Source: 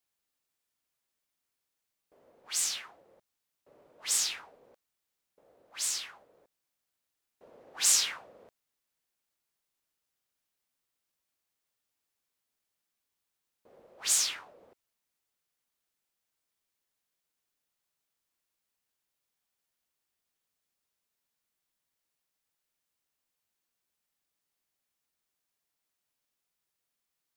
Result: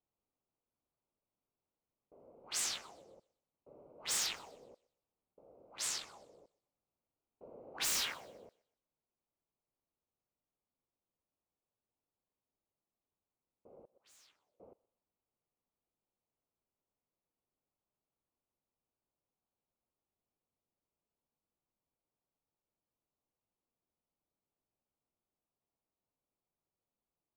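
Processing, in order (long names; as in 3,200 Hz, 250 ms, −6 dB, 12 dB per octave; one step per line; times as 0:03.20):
adaptive Wiener filter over 25 samples
high-shelf EQ 3,600 Hz −12 dB
wave folding −32 dBFS
speech leveller
0:13.79–0:14.60: gate with flip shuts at −55 dBFS, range −30 dB
feedback echo with a high-pass in the loop 125 ms, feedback 35%, high-pass 420 Hz, level −22 dB
level +6 dB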